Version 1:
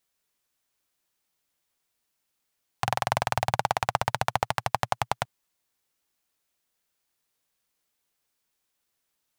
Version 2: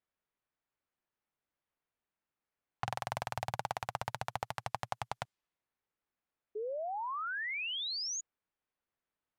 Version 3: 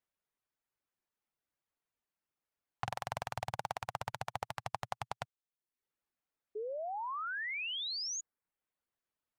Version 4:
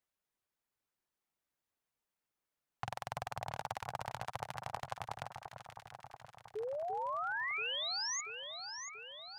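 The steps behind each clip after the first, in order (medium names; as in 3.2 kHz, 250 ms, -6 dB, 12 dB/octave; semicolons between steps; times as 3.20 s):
level-controlled noise filter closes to 2 kHz, open at -25.5 dBFS; painted sound rise, 6.55–8.21 s, 410–6900 Hz -31 dBFS; peak limiter -11 dBFS, peak gain reduction 6.5 dB; trim -6.5 dB
reverb removal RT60 0.61 s; trim -1 dB
in parallel at +0.5 dB: peak limiter -27 dBFS, peak gain reduction 8.5 dB; on the sum: echo whose repeats swap between lows and highs 342 ms, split 1.4 kHz, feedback 77%, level -6 dB; trim -6 dB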